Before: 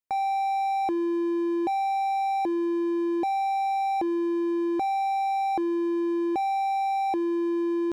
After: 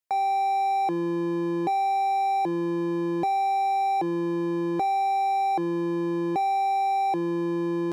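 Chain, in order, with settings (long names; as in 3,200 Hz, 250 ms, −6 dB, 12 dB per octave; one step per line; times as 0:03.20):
sub-octave generator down 1 octave, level +2 dB
harmonic generator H 5 −38 dB, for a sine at −17.5 dBFS
bass and treble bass −13 dB, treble +1 dB
level +2 dB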